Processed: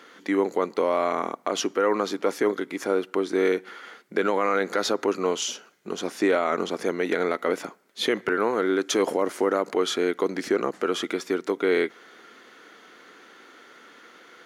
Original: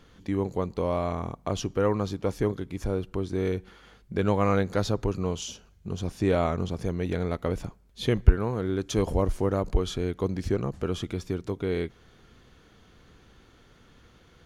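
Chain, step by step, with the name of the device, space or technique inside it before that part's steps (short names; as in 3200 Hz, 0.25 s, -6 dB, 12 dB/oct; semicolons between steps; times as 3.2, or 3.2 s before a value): laptop speaker (HPF 280 Hz 24 dB/oct; bell 1400 Hz +6.5 dB 0.45 oct; bell 2000 Hz +7.5 dB 0.26 oct; limiter -20 dBFS, peak gain reduction 8.5 dB); gain +7.5 dB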